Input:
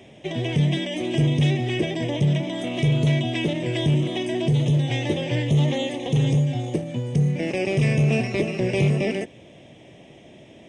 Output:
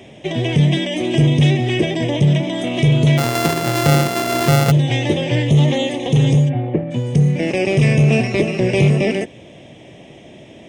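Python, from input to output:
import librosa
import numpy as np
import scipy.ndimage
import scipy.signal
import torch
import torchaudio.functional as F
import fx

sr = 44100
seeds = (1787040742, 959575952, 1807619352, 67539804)

y = fx.sample_sort(x, sr, block=64, at=(3.17, 4.7), fade=0.02)
y = fx.lowpass(y, sr, hz=2200.0, slope=24, at=(6.48, 6.9), fade=0.02)
y = F.gain(torch.from_numpy(y), 6.5).numpy()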